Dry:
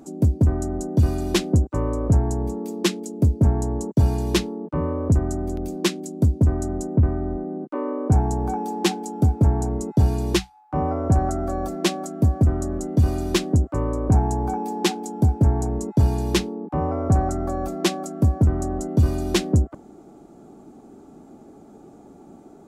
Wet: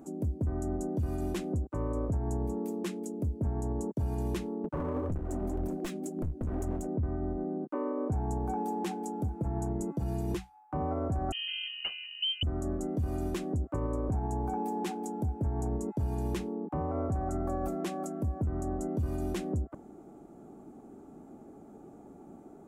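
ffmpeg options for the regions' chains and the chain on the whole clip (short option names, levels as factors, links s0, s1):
-filter_complex "[0:a]asettb=1/sr,asplit=3[s0][s1][s2];[s0]atrim=end=4.644[s3];[s1]atrim=start=4.64:end=6.87,asetpts=PTS-STARTPTS,afade=t=in:d=0.004:c=qsin,afade=t=out:st=2.226:d=0.004:c=qsin,aphaser=in_gain=1:out_gain=1:delay=4.9:decay=0.46:speed=1.9:type=sinusoidal,aeval=exprs='clip(val(0),-1,0.0631)':c=same[s4];[s2]atrim=start=6.866[s5];[s3][s4]acrossfade=d=0.004:c1=hsin:c2=qsin[s6];[s6][s5]acrossfade=d=0.004:c1=qsin:c2=hsin,asettb=1/sr,asplit=3[s7][s8][s9];[s7]atrim=end=9.274[s10];[s8]atrim=start=9.27:end=10.37,asetpts=PTS-STARTPTS,afade=t=in:d=0.004:c=qsin,afade=t=out:st=1.096:d=0.004:c=qsin,aecho=1:1:6:0.53,atrim=end_sample=48510,bandreject=f=282.8:t=h:w=4,bandreject=f=565.6:t=h:w=4,bandreject=f=848.4:t=h:w=4,bandreject=f=1131.2:t=h:w=4,bandreject=f=1414:t=h:w=4,bandreject=f=1696.8:t=h:w=4,bandreject=f=1979.6:t=h:w=4,bandreject=f=2262.4:t=h:w=4,bandreject=f=2545.2:t=h:w=4,bandreject=f=2828:t=h:w=4,bandreject=f=3110.8:t=h:w=4[s11];[s9]atrim=start=10.366[s12];[s10][s11]acrossfade=d=0.004:c1=hsin:c2=qsin[s13];[s13][s12]acrossfade=d=0.004:c1=qsin:c2=hsin,asettb=1/sr,asplit=3[s14][s15][s16];[s14]atrim=end=11.324[s17];[s15]atrim=start=11.32:end=12.43,asetpts=PTS-STARTPTS,afade=t=in:d=0.004:c=qsin,afade=t=out:st=1.106:d=0.004:c=qsin,equalizer=f=2100:w=0.31:g=-9.5,lowpass=f=2700:t=q:w=0.5098,lowpass=f=2700:t=q:w=0.6013,lowpass=f=2700:t=q:w=0.9,lowpass=f=2700:t=q:w=2.563,afreqshift=-3200[s18];[s16]atrim=start=12.426[s19];[s17][s18]acrossfade=d=0.004:c1=hsin:c2=qsin[s20];[s20][s19]acrossfade=d=0.004:c1=qsin:c2=hsin,equalizer=f=4500:t=o:w=1.3:g=-9.5,acompressor=threshold=0.0891:ratio=6,alimiter=limit=0.1:level=0:latency=1:release=46,volume=0.596"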